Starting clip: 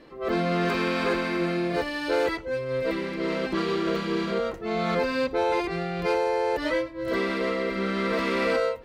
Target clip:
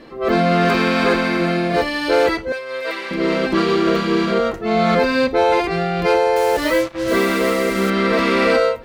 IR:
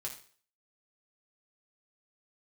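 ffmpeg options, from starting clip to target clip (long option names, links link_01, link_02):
-filter_complex "[0:a]asettb=1/sr,asplit=3[link_01][link_02][link_03];[link_01]atrim=end=2.524[link_04];[link_02]atrim=start=2.52:end=3.11,asetpts=PTS-STARTPTS,afade=type=in:duration=0.004:curve=qsin,afade=type=out:start_time=0.586:duration=0.004:curve=qsin,highpass=770[link_05];[link_03]atrim=start=3.106[link_06];[link_04][link_05]acrossfade=duration=0.004:curve1=hsin:curve2=qsin[link_07];[link_07][link_06]acrossfade=duration=0.004:curve1=qsin:curve2=hsin,asettb=1/sr,asplit=3[link_08][link_09][link_10];[link_08]atrim=end=6.364[link_11];[link_09]atrim=start=6.36:end=7.9,asetpts=PTS-STARTPTS,afade=type=in:duration=0.004:curve=qsin,afade=type=out:start_time=1.536:duration=0.004:curve=qsin,acrusher=bits=5:mix=0:aa=0.5[link_12];[link_10]atrim=start=7.896[link_13];[link_11][link_12]acrossfade=duration=0.004:curve1=hsin:curve2=qsin[link_14];[link_14][link_13]acrossfade=duration=0.004:curve1=qsin:curve2=hsin,asplit=2[link_15][link_16];[1:a]atrim=start_sample=2205,asetrate=79380,aresample=44100[link_17];[link_16][link_17]afir=irnorm=-1:irlink=0,volume=-2dB[link_18];[link_15][link_18]amix=inputs=2:normalize=0,volume=7dB"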